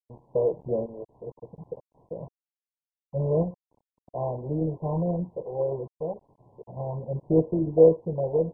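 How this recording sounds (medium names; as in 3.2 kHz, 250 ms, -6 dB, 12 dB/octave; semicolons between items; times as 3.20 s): random-step tremolo 3.5 Hz, depth 75%; a quantiser's noise floor 8-bit, dither none; MP2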